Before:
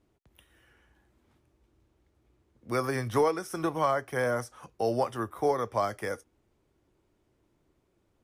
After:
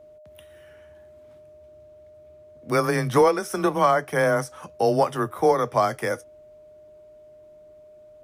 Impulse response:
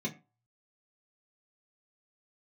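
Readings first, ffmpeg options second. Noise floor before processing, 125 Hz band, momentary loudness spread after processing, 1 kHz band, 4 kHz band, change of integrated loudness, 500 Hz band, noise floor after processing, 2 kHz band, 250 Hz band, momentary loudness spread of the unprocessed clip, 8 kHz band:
−73 dBFS, +7.0 dB, 8 LU, +7.5 dB, +7.5 dB, +7.5 dB, +7.5 dB, −49 dBFS, +8.0 dB, +7.0 dB, 8 LU, +7.5 dB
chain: -af "afreqshift=18,aeval=exprs='val(0)+0.002*sin(2*PI*610*n/s)':channel_layout=same,volume=7.5dB"

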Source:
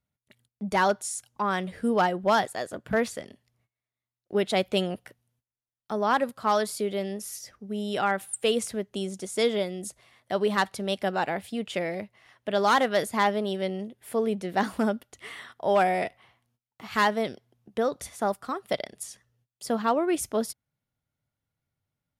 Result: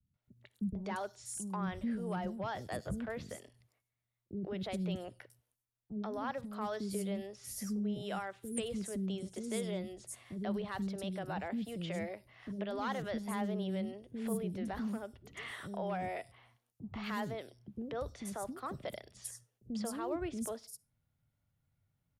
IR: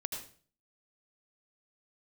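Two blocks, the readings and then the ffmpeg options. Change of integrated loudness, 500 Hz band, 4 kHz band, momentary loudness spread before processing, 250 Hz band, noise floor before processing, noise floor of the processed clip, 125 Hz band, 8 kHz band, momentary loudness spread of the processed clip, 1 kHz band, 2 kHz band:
−12.0 dB, −14.0 dB, −14.5 dB, 13 LU, −6.5 dB, below −85 dBFS, −85 dBFS, −3.5 dB, −9.0 dB, 9 LU, −15.5 dB, −15.0 dB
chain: -filter_complex "[0:a]lowshelf=frequency=250:gain=9,acrossover=split=140[link_01][link_02];[link_02]acompressor=threshold=-41dB:ratio=2[link_03];[link_01][link_03]amix=inputs=2:normalize=0,alimiter=level_in=2.5dB:limit=-24dB:level=0:latency=1:release=15,volume=-2.5dB,acrossover=split=340|5500[link_04][link_05][link_06];[link_05]adelay=140[link_07];[link_06]adelay=240[link_08];[link_04][link_07][link_08]amix=inputs=3:normalize=0,asplit=2[link_09][link_10];[1:a]atrim=start_sample=2205,asetrate=66150,aresample=44100[link_11];[link_10][link_11]afir=irnorm=-1:irlink=0,volume=-18dB[link_12];[link_09][link_12]amix=inputs=2:normalize=0,volume=-1.5dB"

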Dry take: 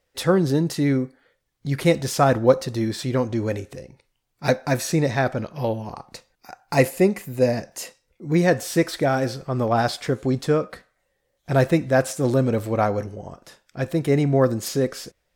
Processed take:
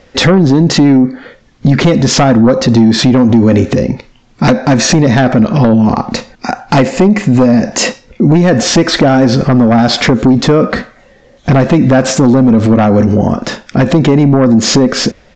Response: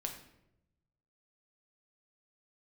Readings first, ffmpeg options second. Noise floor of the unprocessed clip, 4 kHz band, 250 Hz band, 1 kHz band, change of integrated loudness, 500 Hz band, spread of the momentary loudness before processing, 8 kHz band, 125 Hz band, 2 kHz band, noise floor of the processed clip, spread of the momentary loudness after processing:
−73 dBFS, +18.0 dB, +17.0 dB, +11.0 dB, +13.0 dB, +9.5 dB, 16 LU, +15.5 dB, +13.5 dB, +11.5 dB, −44 dBFS, 8 LU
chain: -af "lowpass=frequency=3900:poles=1,equalizer=frequency=230:width=2.6:gain=12,acompressor=threshold=-23dB:ratio=6,aresample=16000,aeval=exprs='0.237*sin(PI/2*2*val(0)/0.237)':channel_layout=same,aresample=44100,alimiter=level_in=20dB:limit=-1dB:release=50:level=0:latency=1,volume=-1dB"

